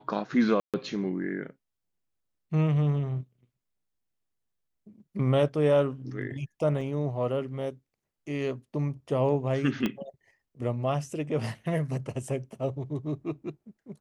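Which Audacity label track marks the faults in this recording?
0.600000	0.740000	gap 0.137 s
6.810000	6.810000	gap 3.6 ms
9.860000	9.860000	pop -15 dBFS

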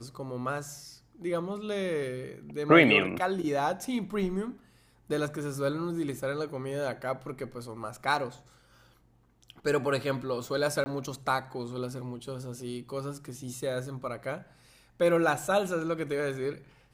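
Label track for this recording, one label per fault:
10.840000	10.860000	gap 20 ms

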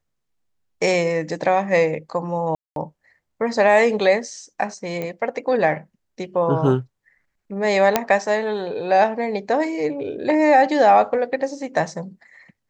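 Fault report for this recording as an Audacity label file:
2.550000	2.760000	gap 0.212 s
5.020000	5.020000	pop -15 dBFS
7.960000	7.960000	pop -1 dBFS

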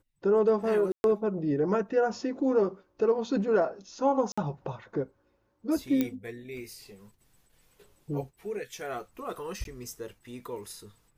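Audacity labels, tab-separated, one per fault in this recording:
0.920000	1.040000	gap 0.121 s
4.320000	4.380000	gap 55 ms
6.010000	6.010000	pop -14 dBFS
9.640000	9.650000	gap 12 ms

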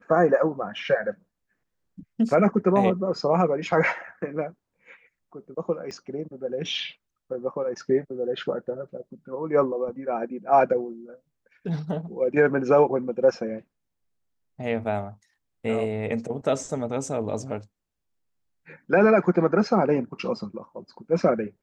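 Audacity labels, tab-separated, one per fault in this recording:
5.910000	5.910000	pop -26 dBFS

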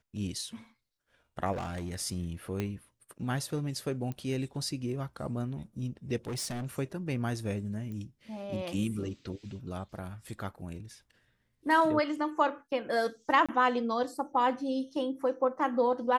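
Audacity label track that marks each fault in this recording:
1.520000	1.960000	clipped -32.5 dBFS
2.600000	2.600000	pop -19 dBFS
4.120000	4.120000	pop -26 dBFS
6.250000	6.660000	clipped -32.5 dBFS
7.920000	7.920000	pop -31 dBFS
13.460000	13.490000	gap 26 ms

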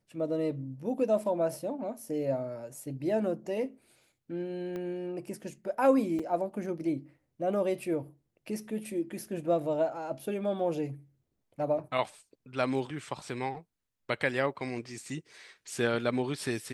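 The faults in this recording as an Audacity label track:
4.760000	4.760000	pop -26 dBFS
6.190000	6.200000	gap 5.2 ms

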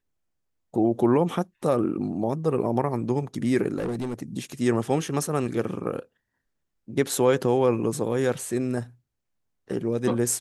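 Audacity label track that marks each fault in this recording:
3.770000	4.230000	clipped -25 dBFS

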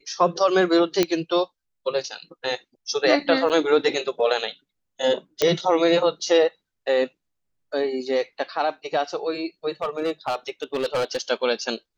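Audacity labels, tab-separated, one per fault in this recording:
1.030000	1.030000	pop -5 dBFS
3.490000	3.500000	gap 8.1 ms
5.420000	5.420000	pop -5 dBFS
9.820000	11.210000	clipped -19.5 dBFS

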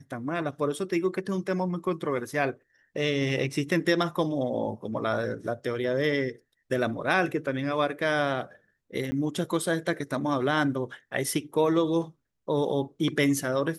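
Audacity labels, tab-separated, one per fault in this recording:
9.110000	9.120000	gap 10 ms

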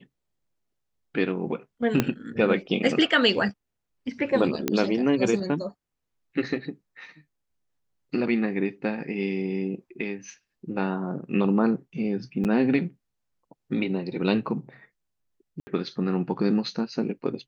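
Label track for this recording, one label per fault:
2.000000	2.000000	pop -7 dBFS
4.680000	4.680000	pop -8 dBFS
12.440000	12.450000	gap 8.3 ms
15.600000	15.670000	gap 70 ms

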